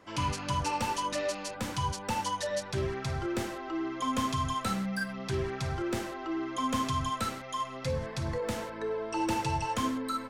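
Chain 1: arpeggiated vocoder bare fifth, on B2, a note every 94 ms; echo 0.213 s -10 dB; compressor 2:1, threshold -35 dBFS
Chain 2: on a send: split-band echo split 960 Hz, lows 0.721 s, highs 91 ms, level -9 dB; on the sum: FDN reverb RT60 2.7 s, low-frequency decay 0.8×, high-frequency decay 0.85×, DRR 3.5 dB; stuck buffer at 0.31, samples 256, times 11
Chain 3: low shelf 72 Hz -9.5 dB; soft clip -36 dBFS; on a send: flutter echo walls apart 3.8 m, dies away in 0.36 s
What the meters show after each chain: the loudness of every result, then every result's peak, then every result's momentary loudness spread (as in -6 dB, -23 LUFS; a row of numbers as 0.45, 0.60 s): -37.5, -30.0, -37.0 LUFS; -22.5, -14.5, -27.5 dBFS; 3, 7, 5 LU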